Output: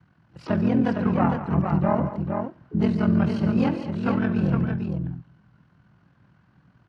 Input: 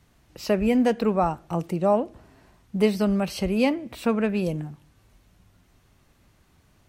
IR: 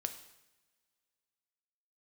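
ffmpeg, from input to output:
-filter_complex "[0:a]equalizer=frequency=150:width_type=o:width=1:gain=12,aeval=exprs='val(0)*sin(2*PI*21*n/s)':channel_layout=same,highpass=frequency=110:width=0.5412,highpass=frequency=110:width=1.3066,equalizer=frequency=110:width_type=q:width=4:gain=5,equalizer=frequency=430:width_type=q:width=4:gain=-8,equalizer=frequency=1000:width_type=q:width=4:gain=5,equalizer=frequency=1500:width_type=q:width=4:gain=10,equalizer=frequency=2300:width_type=q:width=4:gain=-8,equalizer=frequency=3600:width_type=q:width=4:gain=-8,lowpass=frequency=4100:width=0.5412,lowpass=frequency=4100:width=1.3066,aecho=1:1:64|140|142|208|459:0.15|0.188|0.106|0.188|0.531,asplit=4[link_01][link_02][link_03][link_04];[link_02]asetrate=22050,aresample=44100,atempo=2,volume=-11dB[link_05];[link_03]asetrate=66075,aresample=44100,atempo=0.66742,volume=-15dB[link_06];[link_04]asetrate=88200,aresample=44100,atempo=0.5,volume=-18dB[link_07];[link_01][link_05][link_06][link_07]amix=inputs=4:normalize=0,volume=-1.5dB"

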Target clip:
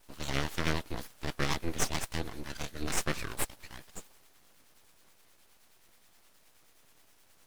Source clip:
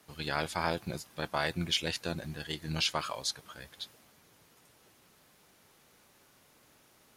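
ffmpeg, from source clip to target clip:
ffmpeg -i in.wav -filter_complex "[0:a]asetrate=42336,aresample=44100,acrossover=split=470[link_01][link_02];[link_01]aeval=exprs='val(0)*(1-0.5/2+0.5/2*cos(2*PI*9.5*n/s))':channel_layout=same[link_03];[link_02]aeval=exprs='val(0)*(1-0.5/2-0.5/2*cos(2*PI*9.5*n/s))':channel_layout=same[link_04];[link_03][link_04]amix=inputs=2:normalize=0,aeval=exprs='abs(val(0))':channel_layout=same,volume=4.5dB" out.wav

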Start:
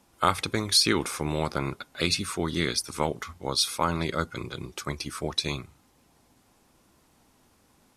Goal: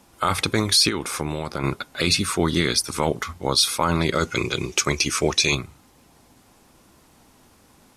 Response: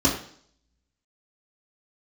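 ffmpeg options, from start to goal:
-filter_complex "[0:a]asettb=1/sr,asplit=3[link_01][link_02][link_03];[link_01]atrim=end=4.154[link_04];[link_02]atrim=start=4.15:end=5.55,asetpts=PTS-STARTPTS,afade=type=in:duration=0.004:curve=qsin,afade=type=out:start_time=1.396:duration=0.004:curve=qsin,equalizer=frequency=400:width_type=o:width=0.67:gain=5,equalizer=frequency=2500:width_type=o:width=0.67:gain=10,equalizer=frequency=6300:width_type=o:width=0.67:gain=12[link_05];[link_03]atrim=start=5.546[link_06];[link_04][link_05]acrossfade=duration=0.004:curve1=hsin:curve2=qsin[link_07];[link_07][link_06]acrossfade=duration=0.004:curve1=qsin:curve2=hsin,alimiter=limit=-15.5dB:level=0:latency=1:release=13,asettb=1/sr,asplit=3[link_08][link_09][link_10];[link_08]atrim=end=0.884[link_11];[link_09]atrim=start=0.88:end=1.64,asetpts=PTS-STARTPTS,afade=type=in:duration=0.004:curve=qsin,afade=type=out:start_time=0.756:duration=0.004:curve=qsin,acompressor=threshold=-30dB:ratio=10[link_12];[link_10]atrim=start=1.636[link_13];[link_11][link_12]acrossfade=duration=0.004:curve1=hsin:curve2=qsin[link_14];[link_14][link_13]acrossfade=duration=0.004:curve1=qsin:curve2=hsin,volume=8dB"

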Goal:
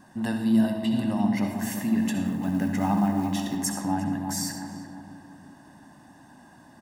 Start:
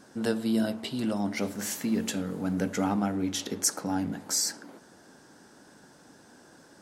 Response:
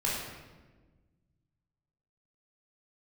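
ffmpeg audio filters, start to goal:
-filter_complex "[0:a]equalizer=frequency=5700:width_type=o:width=1.5:gain=-9,asplit=2[link_01][link_02];[link_02]adelay=347,lowpass=frequency=1200:poles=1,volume=-6.5dB,asplit=2[link_03][link_04];[link_04]adelay=347,lowpass=frequency=1200:poles=1,volume=0.52,asplit=2[link_05][link_06];[link_06]adelay=347,lowpass=frequency=1200:poles=1,volume=0.52,asplit=2[link_07][link_08];[link_08]adelay=347,lowpass=frequency=1200:poles=1,volume=0.52,asplit=2[link_09][link_10];[link_10]adelay=347,lowpass=frequency=1200:poles=1,volume=0.52,asplit=2[link_11][link_12];[link_12]adelay=347,lowpass=frequency=1200:poles=1,volume=0.52[link_13];[link_01][link_03][link_05][link_07][link_09][link_11][link_13]amix=inputs=7:normalize=0,asettb=1/sr,asplit=3[link_14][link_15][link_16];[link_14]atrim=end=2.254[link_17];[link_15]atrim=start=2.25:end=3.57,asetpts=PTS-STARTPTS,afade=type=in:duration=0.004:curve=qsin,afade=type=out:start_time=1.316:duration=0.004:curve=qsin,acrusher=bits=7:mode=log:mix=0:aa=0.000001[link_18];[link_16]atrim=start=3.566[link_19];[link_17][link_18]acrossfade=duration=0.004:curve1=hsin:curve2=qsin[link_20];[link_20][link_19]acrossfade=duration=0.004:curve1=qsin:curve2=hsin,aecho=1:1:1.1:0.81,asplit=2[link_21][link_22];[1:a]atrim=start_sample=2205,asetrate=74970,aresample=44100,adelay=63[link_23];[link_22][link_23]afir=irnorm=-1:irlink=0,volume=-9.5dB[link_24];[link_21][link_24]amix=inputs=2:normalize=0"

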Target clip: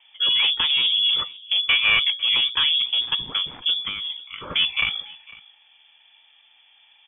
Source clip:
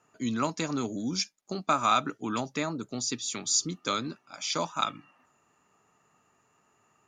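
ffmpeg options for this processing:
ffmpeg -i in.wav -filter_complex "[0:a]bandreject=frequency=60:width_type=h:width=6,bandreject=frequency=120:width_type=h:width=6,bandreject=frequency=180:width_type=h:width=6,bandreject=frequency=240:width_type=h:width=6,bandreject=frequency=300:width_type=h:width=6,acrossover=split=490|2500[link_01][link_02][link_03];[link_01]aeval=exprs='0.0708*sin(PI/2*2.51*val(0)/0.0708)':channel_layout=same[link_04];[link_04][link_02][link_03]amix=inputs=3:normalize=0,asettb=1/sr,asplit=3[link_05][link_06][link_07];[link_05]atrim=end=3.854[link_08];[link_06]atrim=start=3.85:end=4.51,asetpts=PTS-STARTPTS,afade=type=in:duration=0.004:curve=qsin,afade=type=out:start_time=0.656:duration=0.004:curve=qsin,acompressor=threshold=-34dB:ratio=6[link_09];[link_07]atrim=start=4.506[link_10];[link_08][link_09]acrossfade=duration=0.004:curve1=hsin:curve2=qsin[link_11];[link_11][link_10]acrossfade=duration=0.004:curve1=qsin:curve2=hsin,aemphasis=mode=production:type=50fm,asoftclip=type=tanh:threshold=-17dB,asplit=2[link_12][link_13];[link_13]aecho=0:1:501:0.0794[link_14];[link_12][link_14]amix=inputs=2:normalize=0,lowpass=frequency=3100:width_type=q:width=0.5098,lowpass=frequency=3100:width_type=q:width=0.6013,lowpass=frequency=3100:width_type=q:width=0.9,lowpass=frequency=3100:width_type=q:width=2.563,afreqshift=-3600,volume=7dB" out.wav

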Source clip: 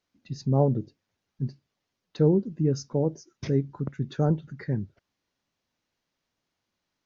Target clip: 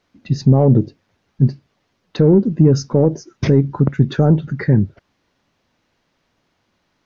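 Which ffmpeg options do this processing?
ffmpeg -i in.wav -filter_complex "[0:a]lowpass=frequency=2700:poles=1,asplit=2[link_01][link_02];[link_02]asoftclip=type=tanh:threshold=-21dB,volume=-9dB[link_03];[link_01][link_03]amix=inputs=2:normalize=0,alimiter=level_in=17dB:limit=-1dB:release=50:level=0:latency=1,volume=-2.5dB" out.wav

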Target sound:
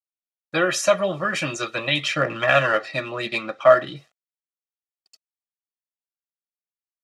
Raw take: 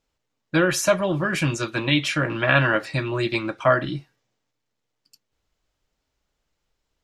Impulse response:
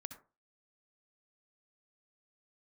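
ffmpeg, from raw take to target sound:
-filter_complex "[0:a]acrusher=bits=9:mix=0:aa=0.000001,asettb=1/sr,asplit=3[link_01][link_02][link_03];[link_01]atrim=end=1.954[link_04];[link_02]atrim=start=1.95:end=3.96,asetpts=PTS-STARTPTS,afade=type=in:duration=0.004:curve=qsin,afade=type=out:start_time=2.006:duration=0.004:curve=qsin,adynamicsmooth=sensitivity=5.5:basefreq=5100[link_05];[link_03]atrim=start=3.956[link_06];[link_04][link_05]acrossfade=duration=0.004:curve1=hsin:curve2=qsin[link_07];[link_07][link_06]acrossfade=duration=0.004:curve1=qsin:curve2=hsin,highpass=230,lowpass=7900,aecho=1:1:1.6:0.54,aphaser=in_gain=1:out_gain=1:delay=4.8:decay=0.34:speed=0.45:type=triangular"

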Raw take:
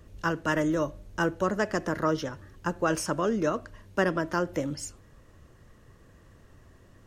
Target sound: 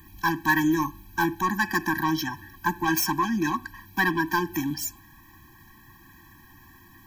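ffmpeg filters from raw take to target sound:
ffmpeg -i in.wav -filter_complex "[0:a]asplit=2[link_01][link_02];[link_02]highpass=frequency=720:poles=1,volume=15dB,asoftclip=type=tanh:threshold=-11.5dB[link_03];[link_01][link_03]amix=inputs=2:normalize=0,lowpass=frequency=5800:poles=1,volume=-6dB,aexciter=amount=15.6:drive=5.5:freq=12000,afftfilt=real='re*eq(mod(floor(b*sr/1024/380),2),0)':imag='im*eq(mod(floor(b*sr/1024/380),2),0)':win_size=1024:overlap=0.75,volume=3dB" out.wav

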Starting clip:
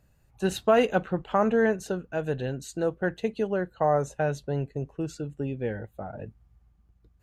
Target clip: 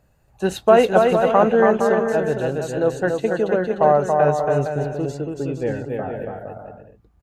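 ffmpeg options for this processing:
ffmpeg -i in.wav -filter_complex "[0:a]equalizer=frequency=700:width=0.62:gain=6.5,asplit=2[link_01][link_02];[link_02]aecho=0:1:280|462|580.3|657.2|707.2:0.631|0.398|0.251|0.158|0.1[link_03];[link_01][link_03]amix=inputs=2:normalize=0,volume=2dB" out.wav

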